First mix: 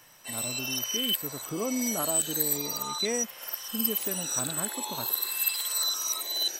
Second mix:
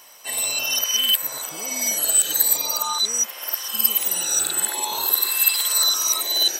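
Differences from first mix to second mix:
speech -10.5 dB; background +9.5 dB

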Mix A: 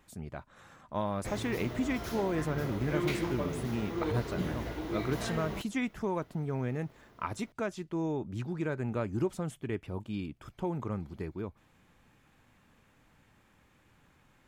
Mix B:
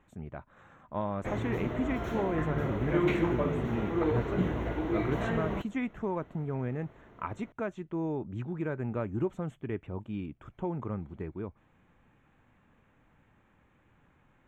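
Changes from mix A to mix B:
background +5.5 dB; master: add running mean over 9 samples

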